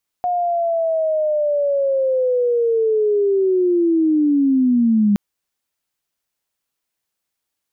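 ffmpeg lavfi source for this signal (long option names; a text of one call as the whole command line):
ffmpeg -f lavfi -i "aevalsrc='pow(10,(-16.5+5*t/4.92)/20)*sin(2*PI*(720*t-520*t*t/(2*4.92)))':duration=4.92:sample_rate=44100" out.wav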